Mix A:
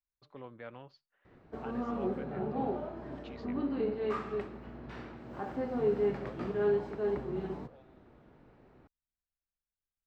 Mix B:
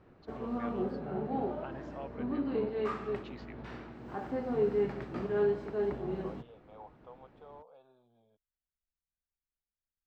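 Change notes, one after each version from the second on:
background: entry −1.25 s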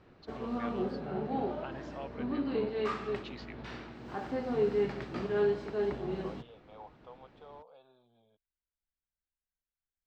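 master: add parametric band 4,400 Hz +8.5 dB 2 octaves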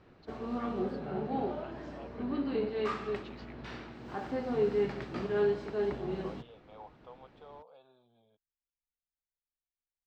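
first voice −7.0 dB

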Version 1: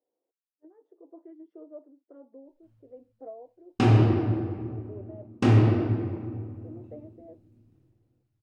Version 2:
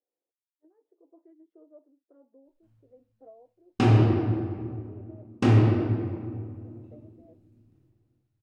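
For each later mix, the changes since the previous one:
speech −8.5 dB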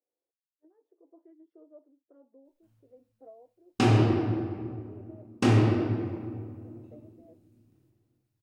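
background: add low-shelf EQ 96 Hz −8.5 dB
master: add high-shelf EQ 5,700 Hz +10.5 dB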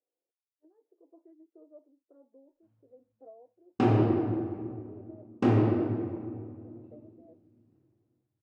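background: add low-shelf EQ 96 Hz +8.5 dB
master: add resonant band-pass 480 Hz, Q 0.54

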